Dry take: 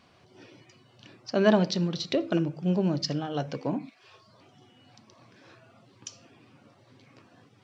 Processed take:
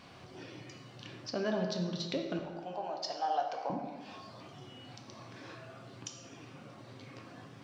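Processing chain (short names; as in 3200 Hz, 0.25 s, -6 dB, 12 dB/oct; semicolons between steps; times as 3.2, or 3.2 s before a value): compressor 2:1, threshold -52 dBFS, peak gain reduction 19.5 dB; 2.39–3.7 resonant high-pass 750 Hz, resonance Q 4.9; plate-style reverb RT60 1.6 s, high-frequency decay 0.6×, DRR 2.5 dB; gain +5 dB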